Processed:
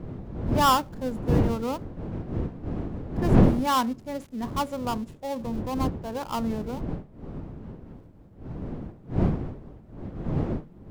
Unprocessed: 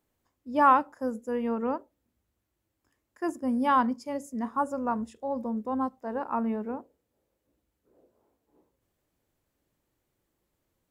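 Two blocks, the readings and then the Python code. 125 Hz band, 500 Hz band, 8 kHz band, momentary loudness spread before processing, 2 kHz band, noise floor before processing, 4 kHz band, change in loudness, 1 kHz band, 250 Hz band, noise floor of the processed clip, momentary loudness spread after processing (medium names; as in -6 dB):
no reading, +2.5 dB, +13.0 dB, 12 LU, 0.0 dB, -81 dBFS, +16.0 dB, +1.0 dB, -0.5 dB, +4.5 dB, -50 dBFS, 19 LU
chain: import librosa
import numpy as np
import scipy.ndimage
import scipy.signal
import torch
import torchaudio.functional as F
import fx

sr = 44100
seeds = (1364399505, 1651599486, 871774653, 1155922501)

y = fx.dead_time(x, sr, dead_ms=0.13)
y = fx.dmg_wind(y, sr, seeds[0], corner_hz=230.0, level_db=-29.0)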